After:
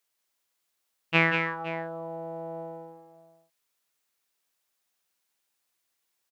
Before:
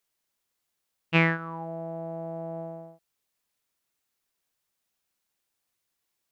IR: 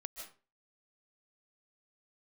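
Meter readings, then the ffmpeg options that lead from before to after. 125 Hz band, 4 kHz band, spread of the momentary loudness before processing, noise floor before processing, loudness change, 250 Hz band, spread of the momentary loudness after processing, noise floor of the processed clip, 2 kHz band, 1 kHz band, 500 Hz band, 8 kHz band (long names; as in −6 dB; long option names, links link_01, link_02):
−5.0 dB, +2.5 dB, 15 LU, −81 dBFS, +0.5 dB, −3.0 dB, 19 LU, −79 dBFS, +2.5 dB, +2.0 dB, 0.0 dB, can't be measured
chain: -filter_complex "[0:a]lowshelf=frequency=270:gain=-9.5,asplit=2[link_01][link_02];[link_02]aecho=0:1:186|516:0.501|0.158[link_03];[link_01][link_03]amix=inputs=2:normalize=0,volume=1.5dB"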